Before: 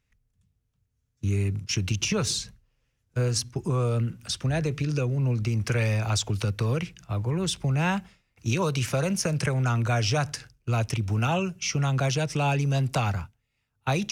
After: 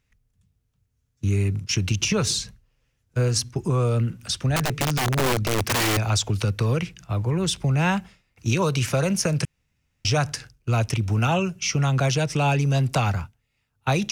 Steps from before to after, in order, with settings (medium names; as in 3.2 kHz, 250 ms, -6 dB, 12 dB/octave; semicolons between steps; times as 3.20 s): 4.56–5.97 s: integer overflow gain 21 dB; 9.45–10.05 s: room tone; trim +3.5 dB